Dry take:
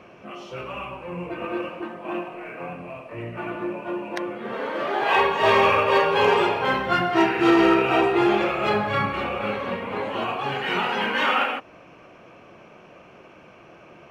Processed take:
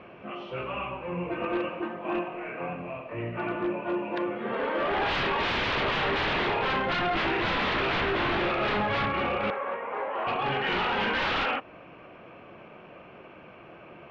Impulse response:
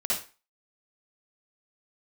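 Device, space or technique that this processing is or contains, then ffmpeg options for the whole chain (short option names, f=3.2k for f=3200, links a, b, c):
synthesiser wavefolder: -filter_complex "[0:a]aeval=exprs='0.0841*(abs(mod(val(0)/0.0841+3,4)-2)-1)':c=same,lowpass=f=3.5k:w=0.5412,lowpass=f=3.5k:w=1.3066,asettb=1/sr,asplit=3[a][b][c];[a]atrim=end=9.504[d];[b]atrim=start=9.5:end=10.27,asetpts=PTS-STARTPTS,afade=t=in:d=0.004:c=qsin,afade=t=out:st=0.766:d=0.004:c=qsin,acrossover=split=430 2100:gain=0.0794 1 0.0891[e][f][g];[e][f][g]amix=inputs=3:normalize=0[h];[c]atrim=start=10.266[i];[d][h]acrossfade=d=0.004:c1=hsin:c2=qsin[j];[j][i]acrossfade=d=0.004:c1=qsin:c2=hsin"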